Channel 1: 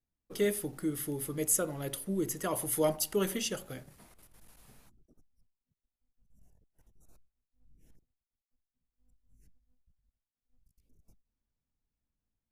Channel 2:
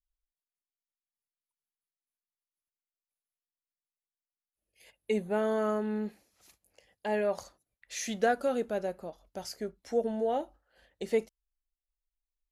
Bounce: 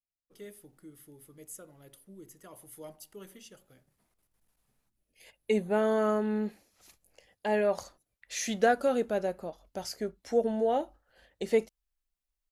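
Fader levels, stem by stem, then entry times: −17.5, +2.5 decibels; 0.00, 0.40 seconds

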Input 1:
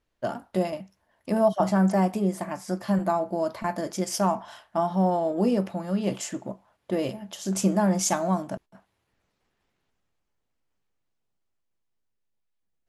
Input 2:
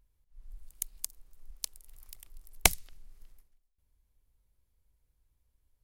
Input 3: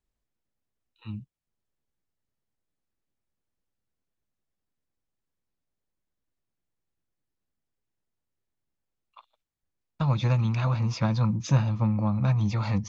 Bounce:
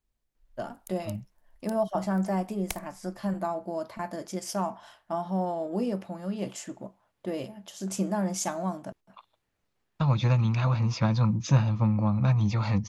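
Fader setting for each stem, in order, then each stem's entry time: −6.0, −13.0, +0.5 decibels; 0.35, 0.05, 0.00 seconds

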